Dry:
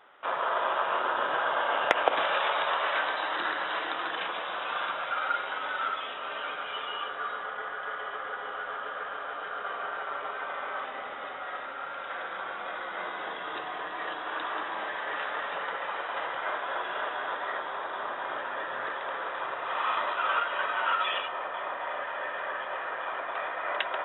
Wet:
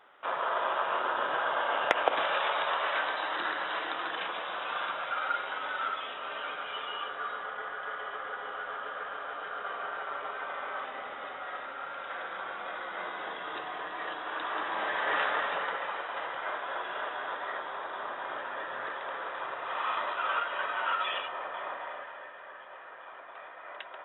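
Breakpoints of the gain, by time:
14.37 s -2 dB
15.17 s +5 dB
16.08 s -3 dB
21.72 s -3 dB
22.36 s -13 dB

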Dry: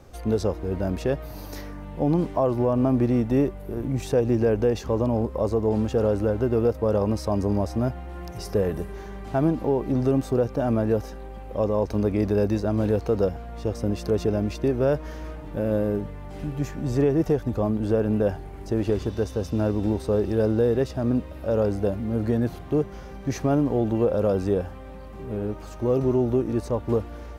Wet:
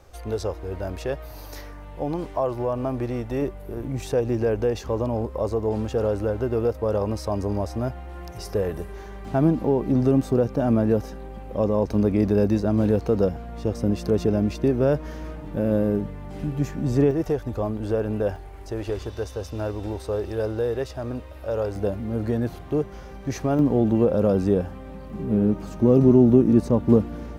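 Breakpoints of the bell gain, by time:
bell 200 Hz 1.4 oct
-11 dB
from 3.42 s -4.5 dB
from 9.25 s +4.5 dB
from 17.11 s -5.5 dB
from 18.36 s -12.5 dB
from 21.76 s -2 dB
from 23.59 s +6 dB
from 25.1 s +13 dB

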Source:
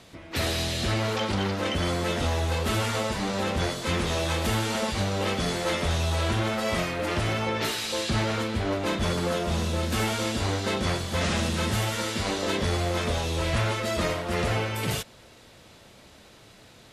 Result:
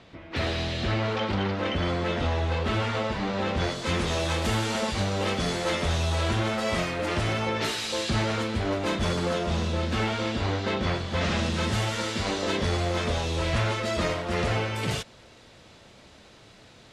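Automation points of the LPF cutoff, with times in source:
3.38 s 3600 Hz
3.96 s 9000 Hz
9.02 s 9000 Hz
10.08 s 4000 Hz
11.05 s 4000 Hz
11.72 s 7400 Hz

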